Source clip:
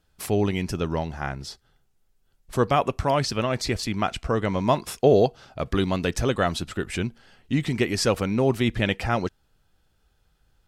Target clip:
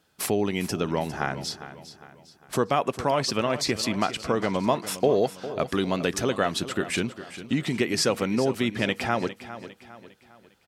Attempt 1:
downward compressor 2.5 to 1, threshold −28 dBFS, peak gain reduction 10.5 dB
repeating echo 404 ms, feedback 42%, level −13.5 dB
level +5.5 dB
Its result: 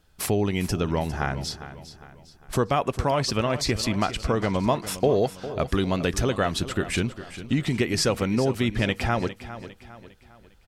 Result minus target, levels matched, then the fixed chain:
125 Hz band +5.0 dB
downward compressor 2.5 to 1, threshold −28 dBFS, peak gain reduction 10.5 dB
high-pass filter 170 Hz 12 dB per octave
repeating echo 404 ms, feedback 42%, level −13.5 dB
level +5.5 dB

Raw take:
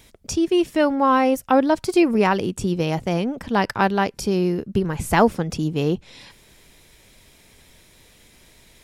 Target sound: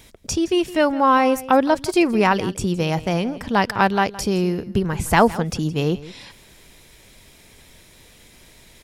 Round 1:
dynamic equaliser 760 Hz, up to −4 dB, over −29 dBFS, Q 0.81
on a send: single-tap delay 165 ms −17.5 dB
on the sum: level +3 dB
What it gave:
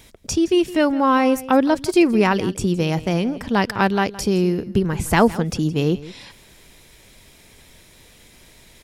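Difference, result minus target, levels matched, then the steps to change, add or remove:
1,000 Hz band −3.0 dB
change: dynamic equaliser 320 Hz, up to −4 dB, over −29 dBFS, Q 0.81

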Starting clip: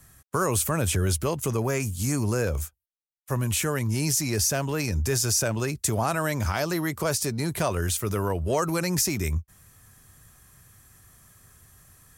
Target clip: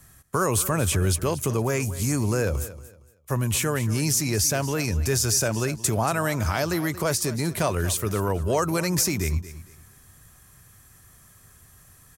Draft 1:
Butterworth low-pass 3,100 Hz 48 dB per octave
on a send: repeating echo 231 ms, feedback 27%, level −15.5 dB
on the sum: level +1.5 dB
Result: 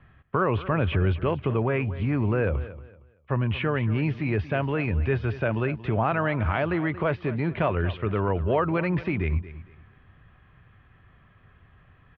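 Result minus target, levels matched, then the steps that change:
4,000 Hz band −10.0 dB
remove: Butterworth low-pass 3,100 Hz 48 dB per octave

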